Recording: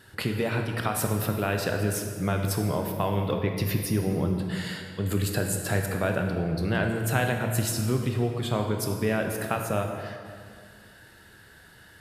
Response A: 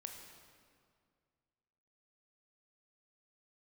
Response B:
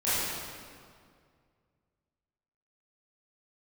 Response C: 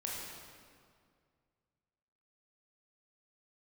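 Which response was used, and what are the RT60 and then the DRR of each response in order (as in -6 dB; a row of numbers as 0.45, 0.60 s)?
A; 2.1, 2.1, 2.1 s; 3.0, -14.0, -4.0 dB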